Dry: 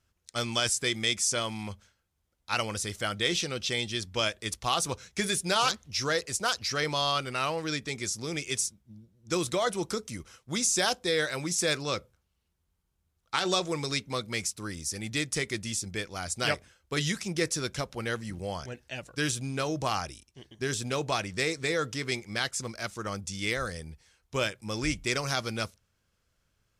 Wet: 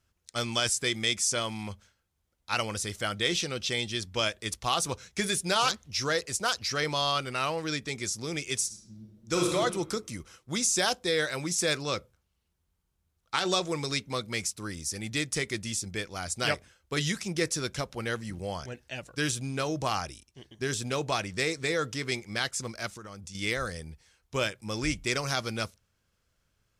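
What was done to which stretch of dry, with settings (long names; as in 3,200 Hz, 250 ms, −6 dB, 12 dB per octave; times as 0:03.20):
0:08.66–0:09.54: thrown reverb, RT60 1.1 s, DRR −0.5 dB
0:22.88–0:23.35: downward compressor, threshold −40 dBFS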